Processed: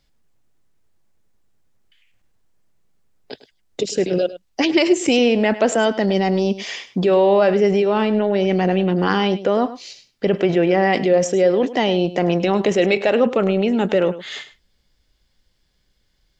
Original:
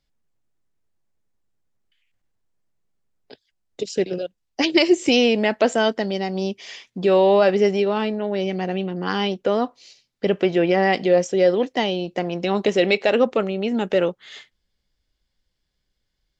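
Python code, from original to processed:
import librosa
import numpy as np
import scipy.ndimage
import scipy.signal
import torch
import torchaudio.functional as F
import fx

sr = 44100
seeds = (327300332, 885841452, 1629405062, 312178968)

p1 = fx.dynamic_eq(x, sr, hz=4500.0, q=1.0, threshold_db=-41.0, ratio=4.0, max_db=-5)
p2 = fx.over_compress(p1, sr, threshold_db=-27.0, ratio=-1.0)
p3 = p1 + (p2 * librosa.db_to_amplitude(0.0))
y = p3 + 10.0 ** (-15.0 / 20.0) * np.pad(p3, (int(103 * sr / 1000.0), 0))[:len(p3)]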